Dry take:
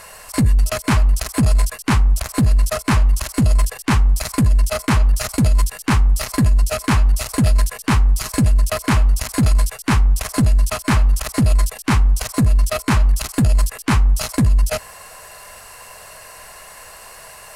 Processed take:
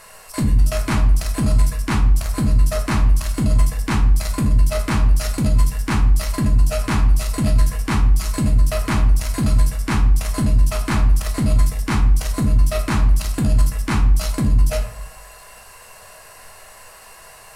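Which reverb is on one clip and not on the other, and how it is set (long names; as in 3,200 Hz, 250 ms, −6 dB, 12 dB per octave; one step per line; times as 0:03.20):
rectangular room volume 84 cubic metres, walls mixed, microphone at 0.62 metres
level −5.5 dB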